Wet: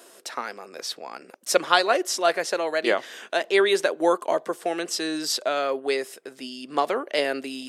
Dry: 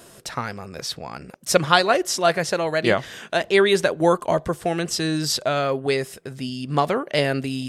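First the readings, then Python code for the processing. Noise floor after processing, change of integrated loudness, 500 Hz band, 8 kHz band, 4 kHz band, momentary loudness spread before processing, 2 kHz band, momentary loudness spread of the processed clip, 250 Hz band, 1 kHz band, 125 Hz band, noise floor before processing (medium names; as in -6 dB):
-51 dBFS, -3.0 dB, -2.5 dB, -2.5 dB, -2.5 dB, 14 LU, -2.5 dB, 16 LU, -5.5 dB, -2.5 dB, under -20 dB, -47 dBFS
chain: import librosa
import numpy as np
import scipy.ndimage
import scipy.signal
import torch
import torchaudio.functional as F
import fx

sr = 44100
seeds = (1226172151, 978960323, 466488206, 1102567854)

y = scipy.signal.sosfilt(scipy.signal.butter(4, 290.0, 'highpass', fs=sr, output='sos'), x)
y = y * 10.0 ** (-2.5 / 20.0)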